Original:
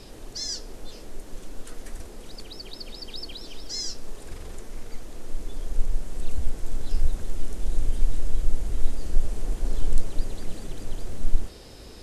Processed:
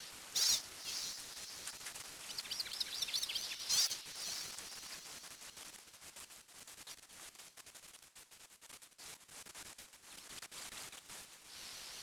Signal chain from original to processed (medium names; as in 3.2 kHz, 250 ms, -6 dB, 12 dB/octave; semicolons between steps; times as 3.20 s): CVSD coder 64 kbps; compression 16:1, threshold -21 dBFS, peak gain reduction 14.5 dB; one-sided clip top -33.5 dBFS, bottom -18 dBFS; high-pass 1.2 kHz 12 dB/octave; echo that smears into a reverb 546 ms, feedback 43%, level -10 dB; expander -59 dBFS; ring modulator with a swept carrier 550 Hz, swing 70%, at 5.6 Hz; trim +4 dB